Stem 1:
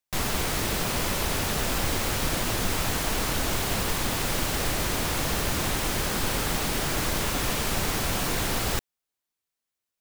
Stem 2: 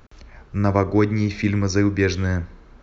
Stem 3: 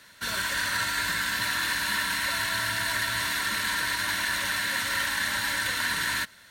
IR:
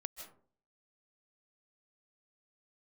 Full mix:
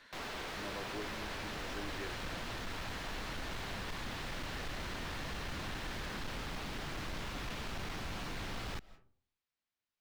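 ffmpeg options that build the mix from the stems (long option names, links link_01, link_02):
-filter_complex "[0:a]asubboost=boost=4.5:cutoff=190,volume=-2.5dB,asplit=2[link_01][link_02];[link_02]volume=-18dB[link_03];[1:a]volume=-13.5dB[link_04];[2:a]alimiter=level_in=2.5dB:limit=-24dB:level=0:latency=1,volume=-2.5dB,volume=-8dB,asplit=2[link_05][link_06];[link_06]volume=-6dB[link_07];[3:a]atrim=start_sample=2205[link_08];[link_03][link_07]amix=inputs=2:normalize=0[link_09];[link_09][link_08]afir=irnorm=-1:irlink=0[link_10];[link_01][link_04][link_05][link_10]amix=inputs=4:normalize=0,acrossover=split=250 5000:gain=0.224 1 0.141[link_11][link_12][link_13];[link_11][link_12][link_13]amix=inputs=3:normalize=0,asoftclip=type=hard:threshold=-26.5dB,alimiter=level_in=12dB:limit=-24dB:level=0:latency=1:release=152,volume=-12dB"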